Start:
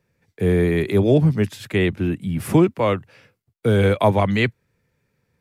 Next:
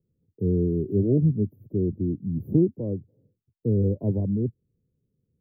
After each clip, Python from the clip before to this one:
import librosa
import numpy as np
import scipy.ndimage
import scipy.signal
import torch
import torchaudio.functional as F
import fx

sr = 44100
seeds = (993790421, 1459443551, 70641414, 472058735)

y = scipy.signal.sosfilt(scipy.signal.cheby2(4, 70, [1500.0, 7700.0], 'bandstop', fs=sr, output='sos'), x)
y = y * librosa.db_to_amplitude(-4.0)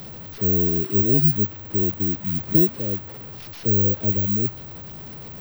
y = fx.delta_mod(x, sr, bps=32000, step_db=-34.5)
y = (np.kron(y[::2], np.eye(2)[0]) * 2)[:len(y)]